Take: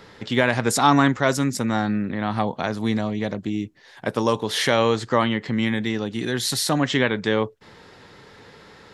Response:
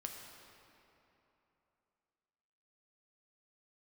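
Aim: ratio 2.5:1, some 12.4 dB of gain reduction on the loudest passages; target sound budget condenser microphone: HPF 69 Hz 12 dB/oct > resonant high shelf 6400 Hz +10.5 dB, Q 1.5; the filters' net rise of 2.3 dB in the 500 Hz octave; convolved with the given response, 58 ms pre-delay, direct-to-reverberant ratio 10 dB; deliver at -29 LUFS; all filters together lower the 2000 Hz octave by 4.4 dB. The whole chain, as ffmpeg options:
-filter_complex "[0:a]equalizer=f=500:t=o:g=3,equalizer=f=2k:t=o:g=-5,acompressor=threshold=-32dB:ratio=2.5,asplit=2[a][b];[1:a]atrim=start_sample=2205,adelay=58[c];[b][c]afir=irnorm=-1:irlink=0,volume=-8dB[d];[a][d]amix=inputs=2:normalize=0,highpass=69,highshelf=f=6.4k:t=q:w=1.5:g=10.5,volume=1dB"

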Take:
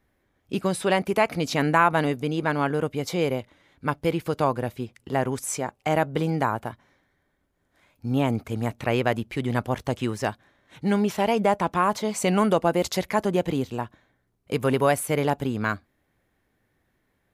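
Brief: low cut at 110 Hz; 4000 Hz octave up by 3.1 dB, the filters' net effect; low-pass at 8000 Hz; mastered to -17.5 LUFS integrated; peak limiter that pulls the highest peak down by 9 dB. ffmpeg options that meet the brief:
-af "highpass=110,lowpass=8k,equalizer=f=4k:t=o:g=4.5,volume=10dB,alimiter=limit=-4dB:level=0:latency=1"

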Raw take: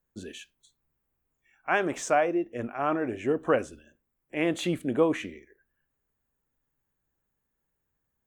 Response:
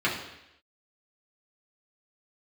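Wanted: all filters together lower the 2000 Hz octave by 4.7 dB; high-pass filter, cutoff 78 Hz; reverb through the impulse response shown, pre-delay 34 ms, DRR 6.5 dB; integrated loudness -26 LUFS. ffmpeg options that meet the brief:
-filter_complex "[0:a]highpass=78,equalizer=f=2k:t=o:g=-6.5,asplit=2[a][b];[1:a]atrim=start_sample=2205,adelay=34[c];[b][c]afir=irnorm=-1:irlink=0,volume=-19.5dB[d];[a][d]amix=inputs=2:normalize=0,volume=2dB"

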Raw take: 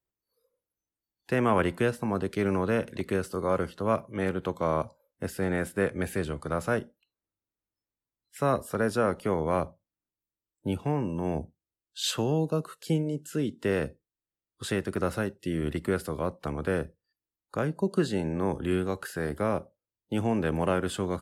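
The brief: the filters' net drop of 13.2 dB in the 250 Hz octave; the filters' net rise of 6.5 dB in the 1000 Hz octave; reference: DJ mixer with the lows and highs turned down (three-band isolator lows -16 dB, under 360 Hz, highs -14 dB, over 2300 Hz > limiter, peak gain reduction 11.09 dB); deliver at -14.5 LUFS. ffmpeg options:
-filter_complex "[0:a]acrossover=split=360 2300:gain=0.158 1 0.2[a][b][c];[a][b][c]amix=inputs=3:normalize=0,equalizer=f=250:t=o:g=-8,equalizer=f=1k:t=o:g=9,volume=19.5dB,alimiter=limit=-0.5dB:level=0:latency=1"

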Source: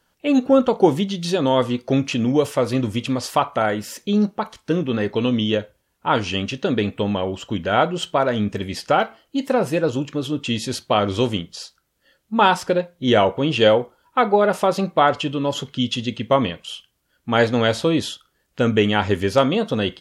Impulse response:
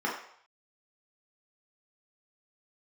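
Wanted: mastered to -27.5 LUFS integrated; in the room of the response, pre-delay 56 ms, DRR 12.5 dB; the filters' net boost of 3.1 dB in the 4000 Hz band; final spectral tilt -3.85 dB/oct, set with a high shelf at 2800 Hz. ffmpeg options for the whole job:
-filter_complex "[0:a]highshelf=f=2.8k:g=-4,equalizer=f=4k:t=o:g=7.5,asplit=2[a][b];[1:a]atrim=start_sample=2205,adelay=56[c];[b][c]afir=irnorm=-1:irlink=0,volume=-22dB[d];[a][d]amix=inputs=2:normalize=0,volume=-7.5dB"

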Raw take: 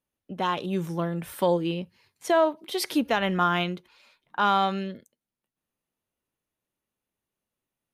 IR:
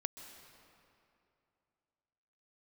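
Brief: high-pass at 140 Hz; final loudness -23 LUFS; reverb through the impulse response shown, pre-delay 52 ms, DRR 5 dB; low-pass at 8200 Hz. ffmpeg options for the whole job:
-filter_complex "[0:a]highpass=140,lowpass=8.2k,asplit=2[a][b];[1:a]atrim=start_sample=2205,adelay=52[c];[b][c]afir=irnorm=-1:irlink=0,volume=-4dB[d];[a][d]amix=inputs=2:normalize=0,volume=2.5dB"

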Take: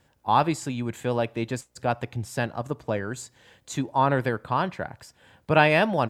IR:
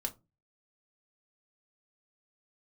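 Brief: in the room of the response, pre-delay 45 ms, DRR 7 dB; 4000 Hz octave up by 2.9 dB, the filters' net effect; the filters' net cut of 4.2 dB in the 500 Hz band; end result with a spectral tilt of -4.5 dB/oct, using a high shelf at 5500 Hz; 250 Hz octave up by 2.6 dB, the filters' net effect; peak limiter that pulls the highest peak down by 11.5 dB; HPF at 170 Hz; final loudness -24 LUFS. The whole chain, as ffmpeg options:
-filter_complex "[0:a]highpass=170,equalizer=f=250:t=o:g=6.5,equalizer=f=500:t=o:g=-7,equalizer=f=4k:t=o:g=7,highshelf=f=5.5k:g=-8.5,alimiter=limit=-15.5dB:level=0:latency=1,asplit=2[a][b];[1:a]atrim=start_sample=2205,adelay=45[c];[b][c]afir=irnorm=-1:irlink=0,volume=-8dB[d];[a][d]amix=inputs=2:normalize=0,volume=5dB"

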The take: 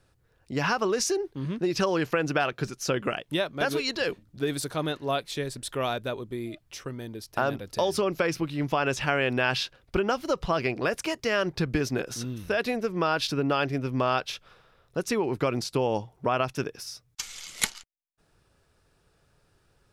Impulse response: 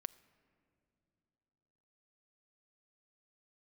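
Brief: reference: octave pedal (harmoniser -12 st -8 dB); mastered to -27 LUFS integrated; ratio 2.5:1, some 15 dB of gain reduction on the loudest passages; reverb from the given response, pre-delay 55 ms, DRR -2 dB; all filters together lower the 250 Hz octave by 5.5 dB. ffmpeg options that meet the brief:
-filter_complex "[0:a]equalizer=f=250:t=o:g=-8,acompressor=threshold=-45dB:ratio=2.5,asplit=2[a][b];[1:a]atrim=start_sample=2205,adelay=55[c];[b][c]afir=irnorm=-1:irlink=0,volume=5.5dB[d];[a][d]amix=inputs=2:normalize=0,asplit=2[e][f];[f]asetrate=22050,aresample=44100,atempo=2,volume=-8dB[g];[e][g]amix=inputs=2:normalize=0,volume=11dB"

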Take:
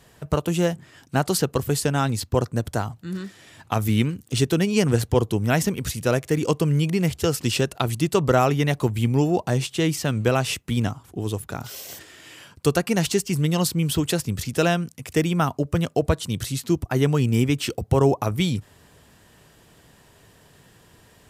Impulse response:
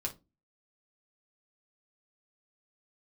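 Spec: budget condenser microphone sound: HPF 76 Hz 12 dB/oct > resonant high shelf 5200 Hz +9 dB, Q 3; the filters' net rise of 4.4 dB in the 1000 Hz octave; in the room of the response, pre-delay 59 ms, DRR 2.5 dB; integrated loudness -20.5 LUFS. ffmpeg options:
-filter_complex "[0:a]equalizer=f=1k:t=o:g=6.5,asplit=2[a][b];[1:a]atrim=start_sample=2205,adelay=59[c];[b][c]afir=irnorm=-1:irlink=0,volume=-3.5dB[d];[a][d]amix=inputs=2:normalize=0,highpass=76,highshelf=f=5.2k:t=q:w=3:g=9,volume=-2.5dB"

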